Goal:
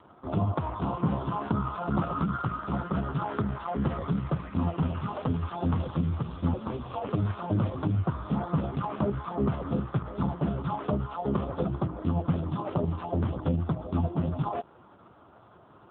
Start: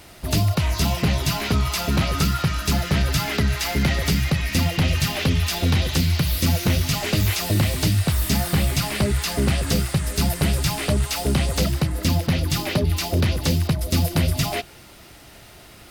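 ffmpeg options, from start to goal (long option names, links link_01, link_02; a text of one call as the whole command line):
ffmpeg -i in.wav -filter_complex "[0:a]highshelf=frequency=1600:width_type=q:width=3:gain=-10.5,asettb=1/sr,asplit=3[link_01][link_02][link_03];[link_01]atrim=end=6.544[link_04];[link_02]atrim=start=6.54:end=7.08,asetpts=PTS-STARTPTS,afade=type=in:duration=0.004:curve=qsin,afade=type=out:start_time=0.536:duration=0.004:curve=qsin,afreqshift=-130[link_05];[link_03]atrim=start=7.076[link_06];[link_04][link_05]acrossfade=duration=0.004:curve1=hsin:curve2=qsin[link_07];[link_07][link_06]acrossfade=duration=0.004:curve1=qsin:curve2=hsin,volume=-4dB" -ar 8000 -c:a libopencore_amrnb -b:a 4750 out.amr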